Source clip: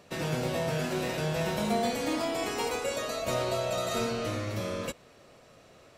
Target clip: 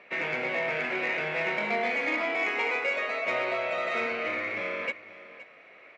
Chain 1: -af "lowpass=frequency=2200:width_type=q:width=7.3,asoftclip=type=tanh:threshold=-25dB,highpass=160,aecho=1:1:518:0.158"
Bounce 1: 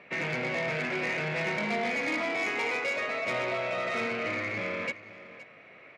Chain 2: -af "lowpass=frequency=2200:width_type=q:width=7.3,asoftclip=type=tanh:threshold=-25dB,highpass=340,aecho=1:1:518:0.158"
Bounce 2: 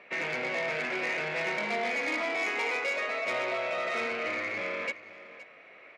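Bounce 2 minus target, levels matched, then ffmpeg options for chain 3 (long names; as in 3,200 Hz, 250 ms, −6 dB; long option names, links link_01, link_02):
soft clipping: distortion +10 dB
-af "lowpass=frequency=2200:width_type=q:width=7.3,asoftclip=type=tanh:threshold=-17.5dB,highpass=340,aecho=1:1:518:0.158"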